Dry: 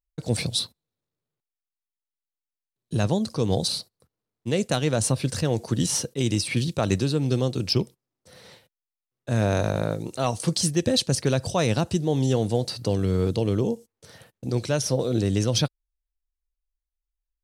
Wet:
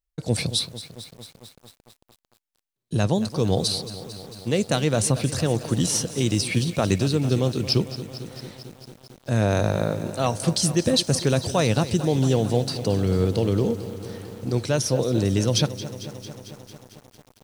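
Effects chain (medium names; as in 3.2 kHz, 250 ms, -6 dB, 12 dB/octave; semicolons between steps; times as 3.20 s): bit-crushed delay 224 ms, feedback 80%, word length 7-bit, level -14 dB; trim +1.5 dB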